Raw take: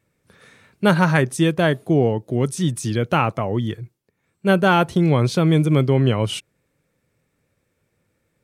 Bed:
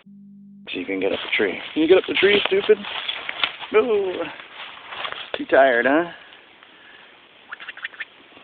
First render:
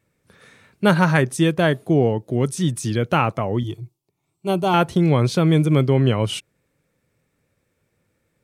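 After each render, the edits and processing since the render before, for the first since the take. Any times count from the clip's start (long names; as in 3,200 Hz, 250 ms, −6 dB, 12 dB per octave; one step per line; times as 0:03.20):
0:03.63–0:04.74: phaser with its sweep stopped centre 330 Hz, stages 8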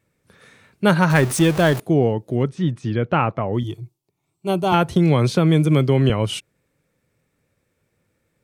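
0:01.10–0:01.80: converter with a step at zero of −22.5 dBFS
0:02.43–0:03.53: low-pass filter 2,500 Hz
0:04.72–0:06.10: multiband upward and downward compressor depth 70%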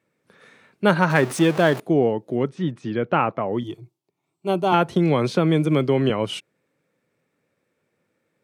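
high-pass filter 200 Hz 12 dB per octave
high-shelf EQ 5,100 Hz −9.5 dB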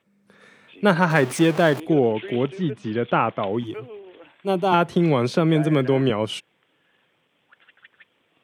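mix in bed −19.5 dB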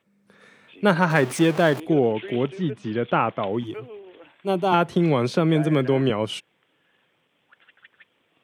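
level −1 dB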